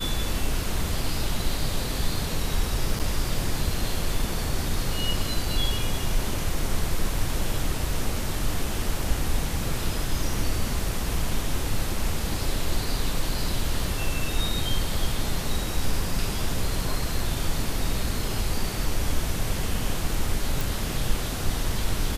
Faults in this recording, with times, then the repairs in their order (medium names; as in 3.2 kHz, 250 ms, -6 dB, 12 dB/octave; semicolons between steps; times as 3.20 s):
2.99–3.00 s: dropout 7.6 ms
20.61 s: pop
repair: de-click; interpolate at 2.99 s, 7.6 ms